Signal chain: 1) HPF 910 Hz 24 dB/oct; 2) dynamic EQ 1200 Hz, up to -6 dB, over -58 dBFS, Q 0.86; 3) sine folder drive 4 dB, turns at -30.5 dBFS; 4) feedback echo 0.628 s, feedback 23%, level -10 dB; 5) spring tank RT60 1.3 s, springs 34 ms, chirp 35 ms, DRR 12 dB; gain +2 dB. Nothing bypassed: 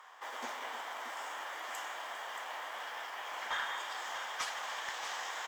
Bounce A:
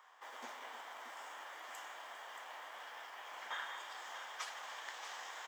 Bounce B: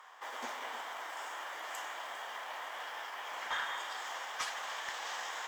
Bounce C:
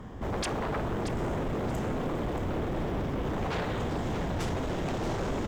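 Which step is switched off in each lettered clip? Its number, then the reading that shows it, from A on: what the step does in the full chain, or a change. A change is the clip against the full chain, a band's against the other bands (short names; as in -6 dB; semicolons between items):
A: 3, distortion -22 dB; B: 4, echo-to-direct -7.5 dB to -12.0 dB; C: 1, 250 Hz band +30.0 dB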